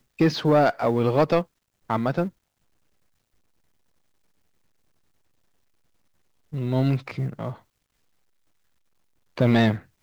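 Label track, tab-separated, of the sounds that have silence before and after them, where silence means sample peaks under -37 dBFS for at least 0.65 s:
6.530000	7.540000	sound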